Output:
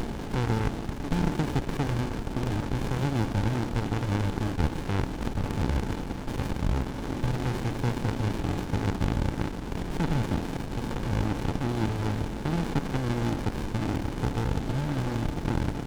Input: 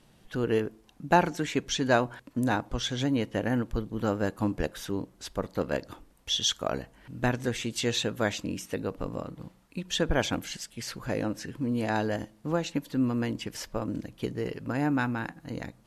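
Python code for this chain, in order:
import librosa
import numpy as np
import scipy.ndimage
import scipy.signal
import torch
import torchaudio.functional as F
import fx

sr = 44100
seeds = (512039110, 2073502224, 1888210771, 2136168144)

y = fx.bin_compress(x, sr, power=0.2)
y = fx.running_max(y, sr, window=65)
y = F.gain(torch.from_numpy(y), -8.0).numpy()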